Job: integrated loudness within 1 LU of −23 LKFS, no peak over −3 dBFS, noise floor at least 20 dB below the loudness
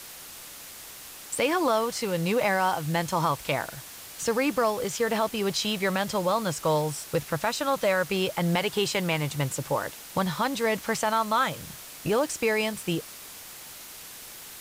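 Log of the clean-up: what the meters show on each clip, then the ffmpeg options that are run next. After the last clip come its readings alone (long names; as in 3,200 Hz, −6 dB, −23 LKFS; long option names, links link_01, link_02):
background noise floor −44 dBFS; target noise floor −47 dBFS; integrated loudness −27.0 LKFS; sample peak −13.0 dBFS; target loudness −23.0 LKFS
→ -af "afftdn=noise_reduction=6:noise_floor=-44"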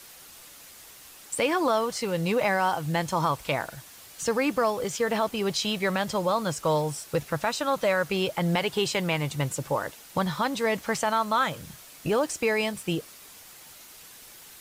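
background noise floor −49 dBFS; integrated loudness −27.0 LKFS; sample peak −13.0 dBFS; target loudness −23.0 LKFS
→ -af "volume=4dB"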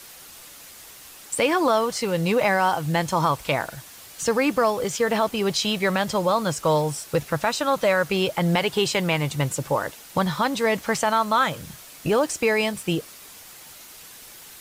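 integrated loudness −23.0 LKFS; sample peak −9.0 dBFS; background noise floor −45 dBFS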